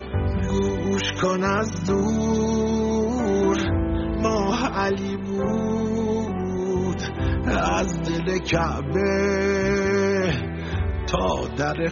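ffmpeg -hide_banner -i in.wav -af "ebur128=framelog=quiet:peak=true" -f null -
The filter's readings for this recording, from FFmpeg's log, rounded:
Integrated loudness:
  I:         -23.2 LUFS
  Threshold: -33.2 LUFS
Loudness range:
  LRA:         2.0 LU
  Threshold: -43.2 LUFS
  LRA low:   -24.3 LUFS
  LRA high:  -22.4 LUFS
True peak:
  Peak:       -9.1 dBFS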